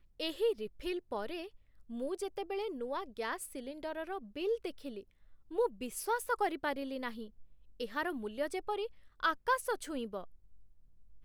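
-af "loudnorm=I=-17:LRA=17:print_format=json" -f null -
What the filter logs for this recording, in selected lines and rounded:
"input_i" : "-37.4",
"input_tp" : "-19.0",
"input_lra" : "2.1",
"input_thresh" : "-47.8",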